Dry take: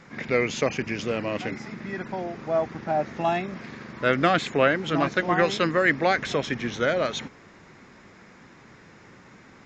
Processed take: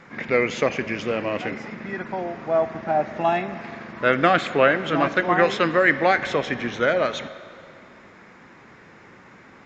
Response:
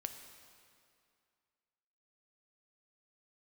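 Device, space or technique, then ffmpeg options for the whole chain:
filtered reverb send: -filter_complex "[0:a]asplit=2[a][b];[b]highpass=f=400:p=1,lowpass=3.4k[c];[1:a]atrim=start_sample=2205[d];[c][d]afir=irnorm=-1:irlink=0,volume=3dB[e];[a][e]amix=inputs=2:normalize=0,volume=-2dB"

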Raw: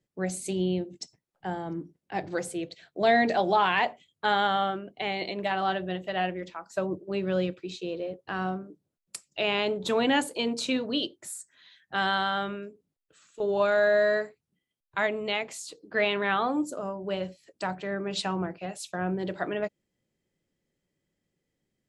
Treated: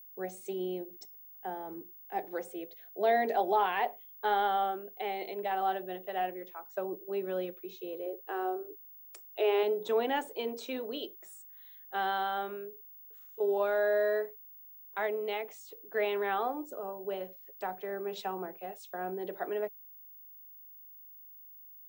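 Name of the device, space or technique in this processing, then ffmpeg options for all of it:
old television with a line whistle: -filter_complex "[0:a]asettb=1/sr,asplit=3[a][b][c];[a]atrim=end=8.064[d];[b]atrim=start=8.06:end=9.63,asetpts=PTS-STARTPTS,afade=t=in:d=0.004:c=qsin,afade=t=out:st=1.566:d=0.004:c=qsin,lowshelf=f=250:t=q:w=3:g=-12[e];[c]atrim=start=9.626[f];[d][e]acrossfade=d=0.004:c1=hsin:c2=qsin[g];[g][f]acrossfade=d=0.004:c1=qsin:c2=hsin,highpass=f=230:w=0.5412,highpass=f=230:w=1.3066,equalizer=f=290:t=q:w=4:g=-5,equalizer=f=420:t=q:w=4:g=9,equalizer=f=780:t=q:w=4:g=7,equalizer=f=2.7k:t=q:w=4:g=-3,equalizer=f=4.5k:t=q:w=4:g=-9,equalizer=f=7.3k:t=q:w=4:g=-7,lowpass=f=8.6k:w=0.5412,lowpass=f=8.6k:w=1.3066,aeval=exprs='val(0)+0.00891*sin(2*PI*15625*n/s)':c=same,volume=-8.5dB"

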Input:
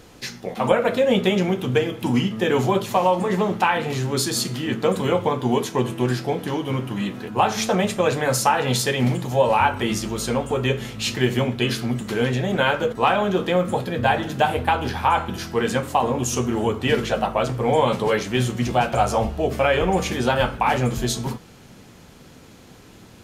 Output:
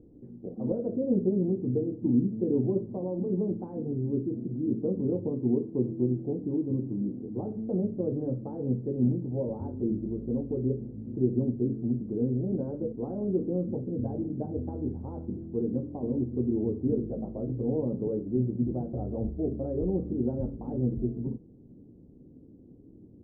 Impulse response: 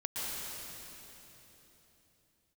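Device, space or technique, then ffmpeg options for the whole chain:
under water: -af "lowpass=f=430:w=0.5412,lowpass=f=430:w=1.3066,equalizer=f=290:t=o:w=0.58:g=7,volume=-7dB"

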